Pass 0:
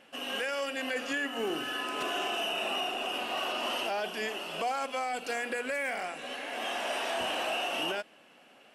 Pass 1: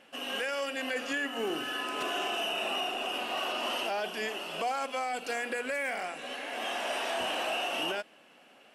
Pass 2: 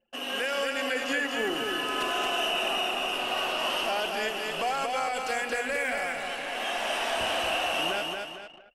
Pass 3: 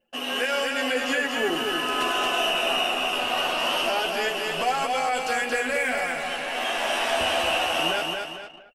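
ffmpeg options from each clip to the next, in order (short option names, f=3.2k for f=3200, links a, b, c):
-af "equalizer=f=82:w=0.96:g=-3.5"
-af "asubboost=boost=5:cutoff=110,aecho=1:1:227|454|681|908|1135:0.631|0.265|0.111|0.0467|0.0196,anlmdn=0.01,volume=3dB"
-filter_complex "[0:a]asplit=2[a][b];[b]adelay=12,volume=-4.5dB[c];[a][c]amix=inputs=2:normalize=0,volume=3dB"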